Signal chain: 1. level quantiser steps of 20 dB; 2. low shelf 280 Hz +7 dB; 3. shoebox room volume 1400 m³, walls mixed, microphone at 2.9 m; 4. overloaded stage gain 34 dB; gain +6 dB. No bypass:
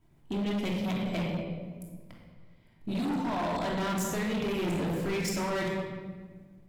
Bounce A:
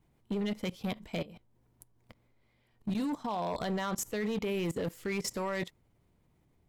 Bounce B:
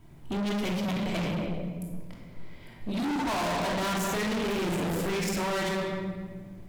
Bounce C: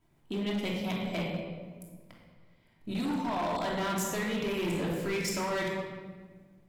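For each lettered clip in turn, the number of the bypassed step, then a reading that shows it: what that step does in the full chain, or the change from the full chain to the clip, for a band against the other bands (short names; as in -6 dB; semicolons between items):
3, momentary loudness spread change -8 LU; 1, crest factor change -2.0 dB; 2, 125 Hz band -3.5 dB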